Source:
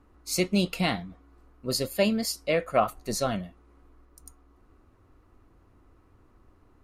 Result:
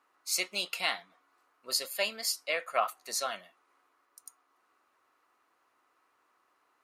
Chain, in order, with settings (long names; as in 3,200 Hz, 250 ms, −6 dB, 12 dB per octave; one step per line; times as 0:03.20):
high-pass filter 980 Hz 12 dB per octave